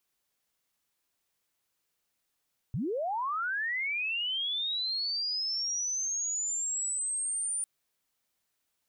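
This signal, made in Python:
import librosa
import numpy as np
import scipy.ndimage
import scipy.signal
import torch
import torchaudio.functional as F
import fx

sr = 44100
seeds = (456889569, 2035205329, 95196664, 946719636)

y = fx.chirp(sr, length_s=4.9, from_hz=100.0, to_hz=9300.0, law='linear', from_db=-29.0, to_db=-29.5)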